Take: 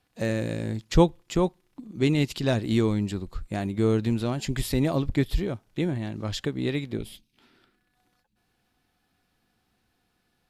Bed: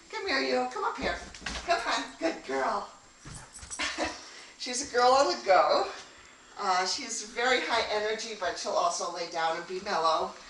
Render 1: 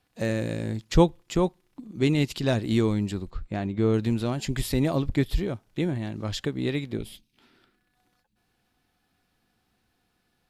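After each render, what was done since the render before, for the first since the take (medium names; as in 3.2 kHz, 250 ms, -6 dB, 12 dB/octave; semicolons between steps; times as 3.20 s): 3.30–3.94 s: distance through air 120 m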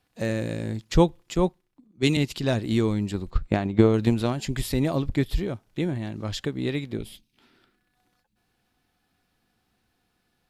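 1.34–2.17 s: three bands expanded up and down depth 100%; 3.13–4.33 s: transient shaper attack +12 dB, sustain +3 dB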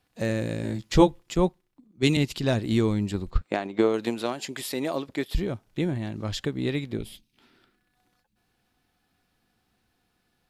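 0.62–1.19 s: doubling 15 ms -3 dB; 3.41–5.35 s: high-pass 350 Hz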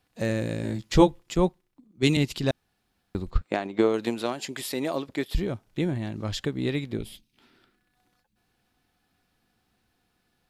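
2.51–3.15 s: room tone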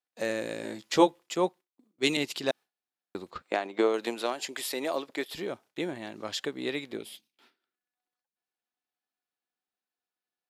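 gate with hold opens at -46 dBFS; high-pass 400 Hz 12 dB/octave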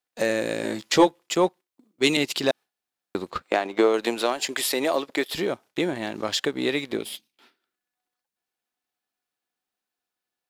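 in parallel at +2.5 dB: compression, threshold -36 dBFS, peak gain reduction 20 dB; on the sum: waveshaping leveller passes 1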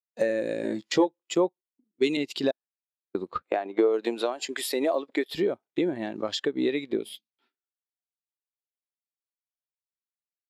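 compression 4:1, threshold -24 dBFS, peak gain reduction 11 dB; spectral contrast expander 1.5:1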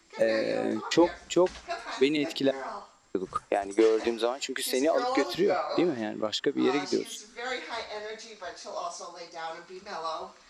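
add bed -8 dB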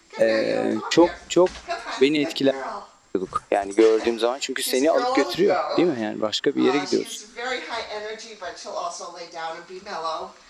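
trim +6 dB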